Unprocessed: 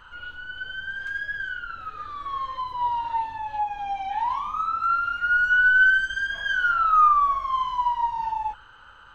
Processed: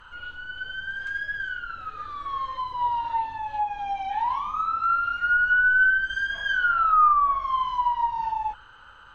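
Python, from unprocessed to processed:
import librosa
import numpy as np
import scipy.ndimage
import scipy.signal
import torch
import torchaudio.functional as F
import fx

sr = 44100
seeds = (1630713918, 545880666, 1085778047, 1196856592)

y = fx.env_lowpass_down(x, sr, base_hz=1700.0, full_db=-15.5)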